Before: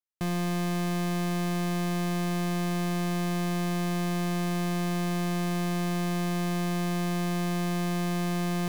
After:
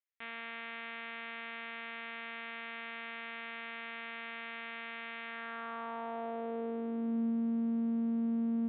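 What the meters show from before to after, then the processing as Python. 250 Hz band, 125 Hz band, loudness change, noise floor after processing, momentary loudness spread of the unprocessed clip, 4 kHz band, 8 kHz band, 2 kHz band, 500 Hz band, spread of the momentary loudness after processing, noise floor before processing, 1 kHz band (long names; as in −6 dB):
−7.5 dB, below −25 dB, −9.0 dB, −44 dBFS, 0 LU, −10.5 dB, below −40 dB, −3.5 dB, −9.5 dB, 9 LU, −28 dBFS, −9.5 dB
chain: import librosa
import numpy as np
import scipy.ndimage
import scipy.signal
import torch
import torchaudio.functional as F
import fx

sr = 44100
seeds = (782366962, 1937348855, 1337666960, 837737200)

y = fx.lpc_monotone(x, sr, seeds[0], pitch_hz=230.0, order=16)
y = fx.filter_sweep_bandpass(y, sr, from_hz=2100.0, to_hz=210.0, start_s=5.24, end_s=7.33, q=2.2)
y = y * librosa.db_to_amplitude(3.5)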